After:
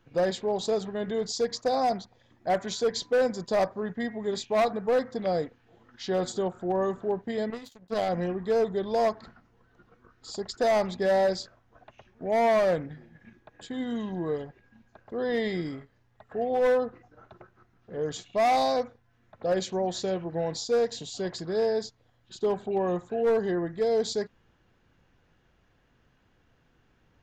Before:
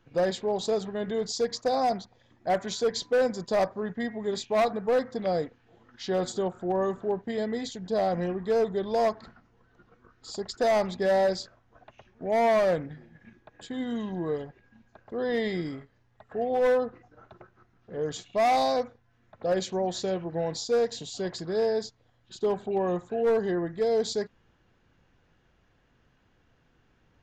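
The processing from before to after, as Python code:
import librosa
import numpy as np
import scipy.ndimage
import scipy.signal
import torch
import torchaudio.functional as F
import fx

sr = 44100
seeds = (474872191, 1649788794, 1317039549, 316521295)

y = fx.power_curve(x, sr, exponent=2.0, at=(7.5, 8.09))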